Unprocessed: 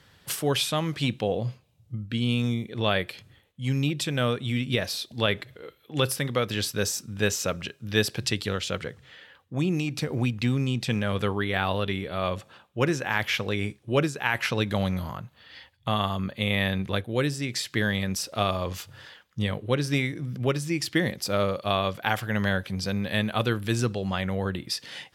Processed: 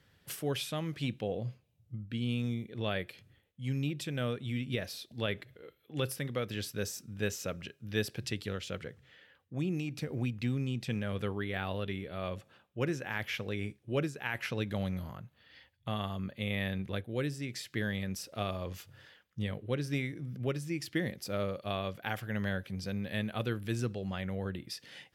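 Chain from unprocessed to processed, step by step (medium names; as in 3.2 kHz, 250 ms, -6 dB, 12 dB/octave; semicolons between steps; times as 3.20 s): ten-band graphic EQ 1 kHz -6 dB, 4 kHz -4 dB, 8 kHz -4 dB; trim -7.5 dB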